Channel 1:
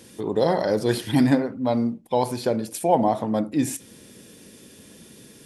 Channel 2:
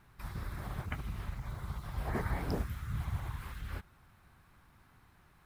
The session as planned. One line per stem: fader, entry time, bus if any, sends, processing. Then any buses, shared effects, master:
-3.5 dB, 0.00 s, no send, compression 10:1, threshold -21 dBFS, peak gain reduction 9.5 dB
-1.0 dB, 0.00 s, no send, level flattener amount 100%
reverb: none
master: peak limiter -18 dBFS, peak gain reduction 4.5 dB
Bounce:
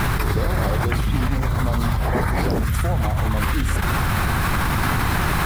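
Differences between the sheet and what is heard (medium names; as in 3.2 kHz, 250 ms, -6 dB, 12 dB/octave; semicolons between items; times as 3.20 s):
stem 2 -1.0 dB -> +10.0 dB; master: missing peak limiter -18 dBFS, peak gain reduction 4.5 dB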